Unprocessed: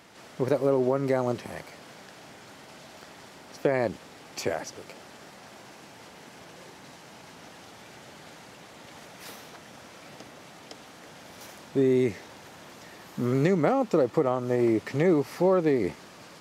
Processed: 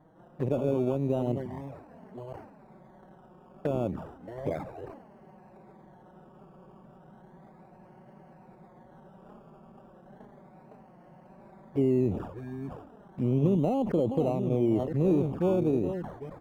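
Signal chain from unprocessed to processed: reverse delay 0.582 s, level -9 dB; high shelf 2300 Hz -11 dB; comb 1.2 ms, depth 32%; decimation with a swept rate 17×, swing 60% 0.34 Hz; added harmonics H 4 -19 dB, 5 -37 dB, 6 -22 dB, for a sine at -11 dBFS; EQ curve 400 Hz 0 dB, 1100 Hz -5 dB, 4400 Hz -24 dB; envelope flanger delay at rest 6.9 ms, full sweep at -25 dBFS; sustainer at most 74 dB/s

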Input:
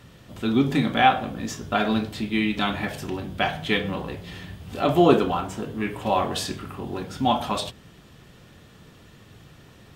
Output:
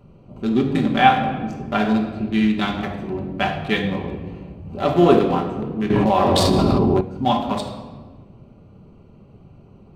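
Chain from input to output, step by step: Wiener smoothing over 25 samples; shoebox room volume 1200 m³, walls mixed, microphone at 1.2 m; 5.9–7.01 fast leveller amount 100%; gain +1.5 dB

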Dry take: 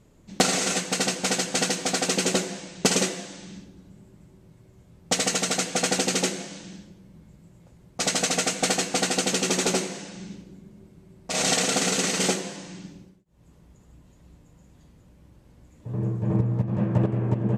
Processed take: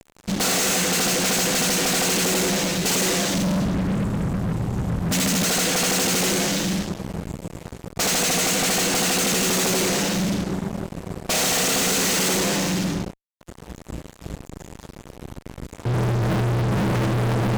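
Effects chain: 3.34–5.44 resonant low shelf 330 Hz +9 dB, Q 1.5; fuzz box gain 47 dB, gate -50 dBFS; gain -7 dB

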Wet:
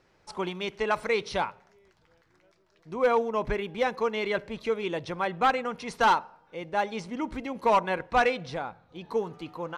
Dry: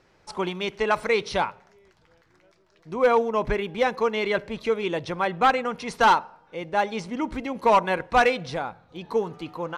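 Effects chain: 7.8–9.03 high shelf 8900 Hz -7 dB; gain -4 dB

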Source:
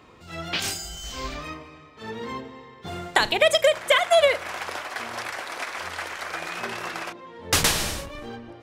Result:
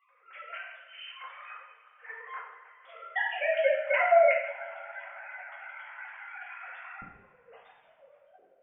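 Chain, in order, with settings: sine-wave speech; band-pass 1600 Hz, Q 1.7, from 7.02 s 190 Hz; reverb, pre-delay 3 ms, DRR -6 dB; gain -3 dB

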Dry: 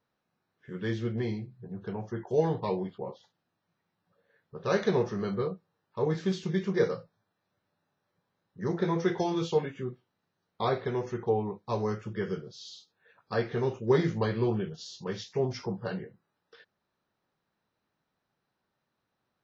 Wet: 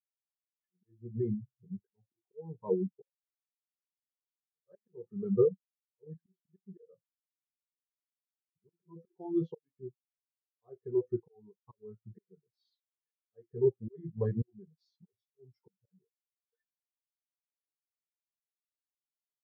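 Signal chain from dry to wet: auto swell 0.525 s; reverb removal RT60 0.53 s; spectral expander 2.5:1; gain +6 dB

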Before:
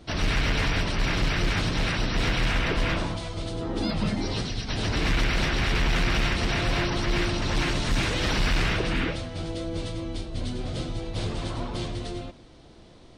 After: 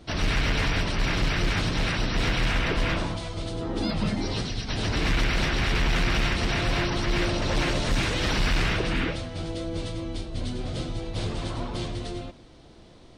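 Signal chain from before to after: 7.21–7.95 bell 550 Hz +6.5 dB 0.6 oct

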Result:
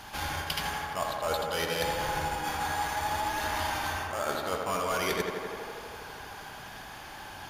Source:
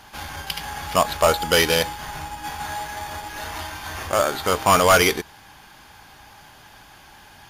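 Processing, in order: reverse; compressor 16:1, threshold -30 dBFS, peak gain reduction 19.5 dB; reverse; tape echo 82 ms, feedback 89%, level -3.5 dB, low-pass 3000 Hz; gain +1 dB

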